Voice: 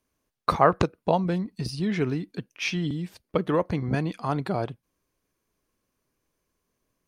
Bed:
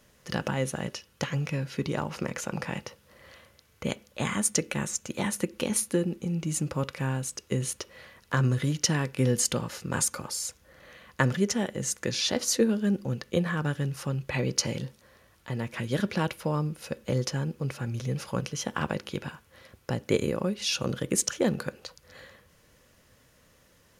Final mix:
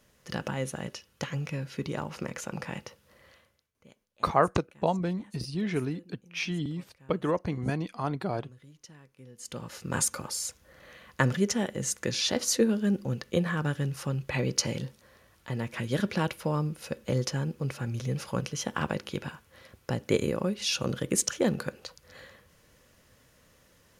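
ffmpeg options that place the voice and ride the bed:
-filter_complex "[0:a]adelay=3750,volume=-4dB[a];[1:a]volume=22dB,afade=t=out:st=3.12:d=0.6:silence=0.0749894,afade=t=in:st=9.38:d=0.58:silence=0.0530884[b];[a][b]amix=inputs=2:normalize=0"

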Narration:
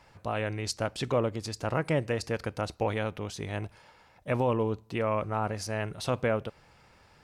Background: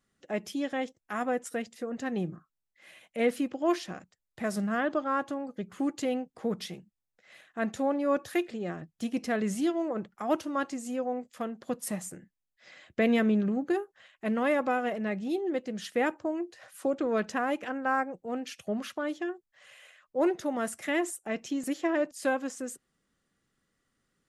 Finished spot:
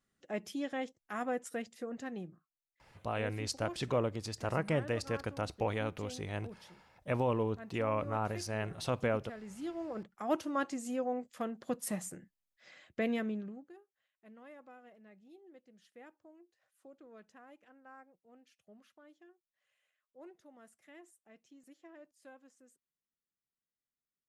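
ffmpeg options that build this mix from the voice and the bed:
-filter_complex "[0:a]adelay=2800,volume=-4.5dB[a];[1:a]volume=9.5dB,afade=t=out:st=1.88:d=0.49:silence=0.237137,afade=t=in:st=9.46:d=1.04:silence=0.177828,afade=t=out:st=12.47:d=1.23:silence=0.0630957[b];[a][b]amix=inputs=2:normalize=0"

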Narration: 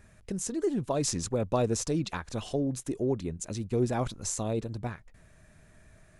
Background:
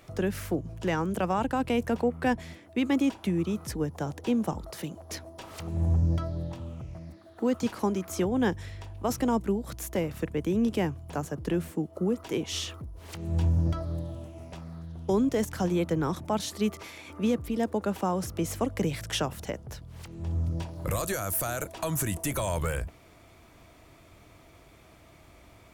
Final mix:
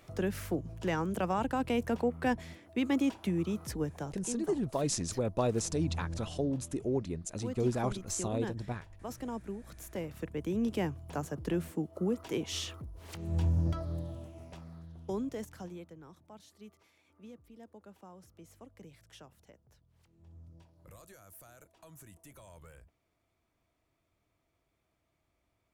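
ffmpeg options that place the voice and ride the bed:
-filter_complex "[0:a]adelay=3850,volume=-3dB[a];[1:a]volume=5dB,afade=t=out:st=3.84:d=0.43:silence=0.354813,afade=t=in:st=9.59:d=1.43:silence=0.354813,afade=t=out:st=14.09:d=1.85:silence=0.0944061[b];[a][b]amix=inputs=2:normalize=0"

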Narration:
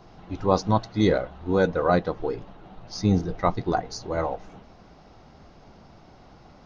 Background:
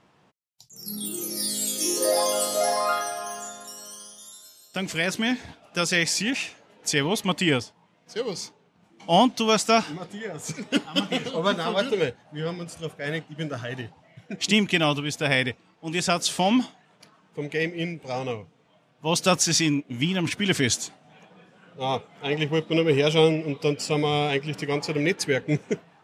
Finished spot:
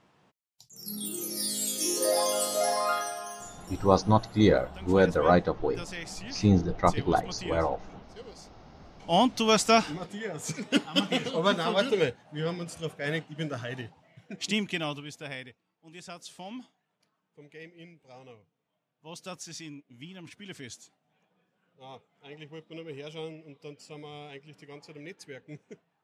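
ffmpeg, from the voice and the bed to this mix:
-filter_complex "[0:a]adelay=3400,volume=-0.5dB[a];[1:a]volume=12dB,afade=t=out:st=3:d=0.93:silence=0.211349,afade=t=in:st=8.54:d=1.02:silence=0.16788,afade=t=out:st=13.15:d=2.33:silence=0.112202[b];[a][b]amix=inputs=2:normalize=0"

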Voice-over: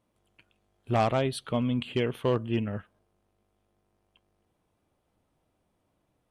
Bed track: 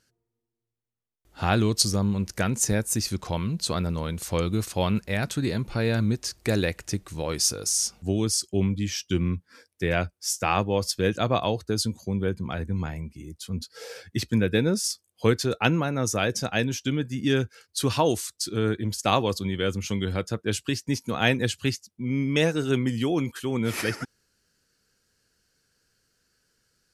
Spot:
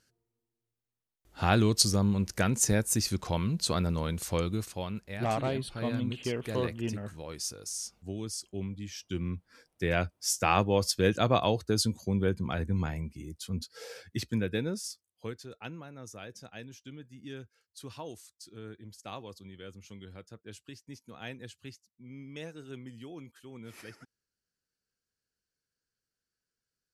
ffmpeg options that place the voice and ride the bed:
-filter_complex "[0:a]adelay=4300,volume=-5.5dB[a];[1:a]volume=9dB,afade=t=out:st=4.17:d=0.69:silence=0.298538,afade=t=in:st=8.91:d=1.48:silence=0.281838,afade=t=out:st=13.09:d=2.28:silence=0.11885[b];[a][b]amix=inputs=2:normalize=0"

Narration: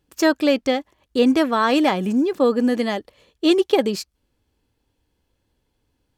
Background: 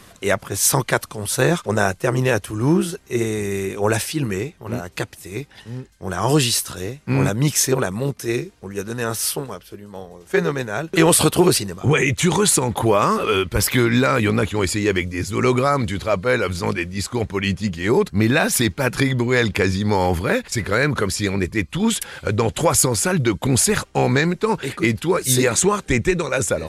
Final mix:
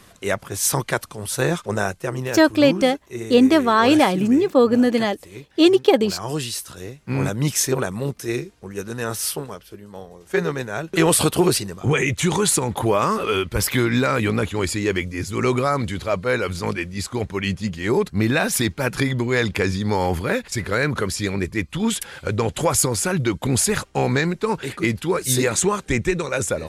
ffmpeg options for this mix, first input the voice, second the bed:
-filter_complex "[0:a]adelay=2150,volume=2.5dB[a];[1:a]volume=3.5dB,afade=t=out:st=1.72:d=0.63:silence=0.501187,afade=t=in:st=6.47:d=1.05:silence=0.446684[b];[a][b]amix=inputs=2:normalize=0"

